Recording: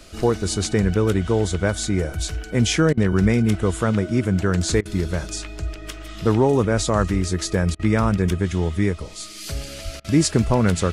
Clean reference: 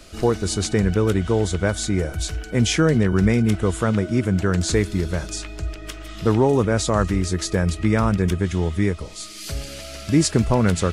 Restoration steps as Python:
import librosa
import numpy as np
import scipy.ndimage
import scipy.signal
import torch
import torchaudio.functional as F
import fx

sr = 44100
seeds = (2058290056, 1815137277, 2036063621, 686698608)

y = fx.highpass(x, sr, hz=140.0, slope=24, at=(6.76, 6.88), fade=0.02)
y = fx.highpass(y, sr, hz=140.0, slope=24, at=(9.84, 9.96), fade=0.02)
y = fx.fix_interpolate(y, sr, at_s=(2.93, 4.81, 7.75, 10.0), length_ms=43.0)